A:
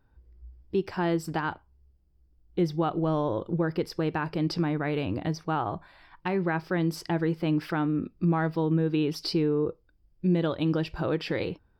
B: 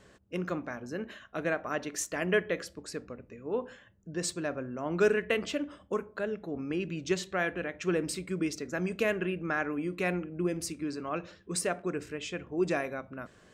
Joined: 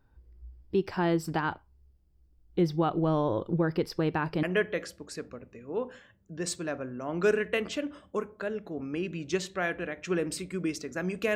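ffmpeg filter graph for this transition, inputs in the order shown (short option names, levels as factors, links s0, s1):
-filter_complex "[0:a]apad=whole_dur=11.35,atrim=end=11.35,atrim=end=4.432[s0];[1:a]atrim=start=2.198:end=9.12[s1];[s0][s1]acrossfade=d=0.004:c1=hsin:c2=hsin"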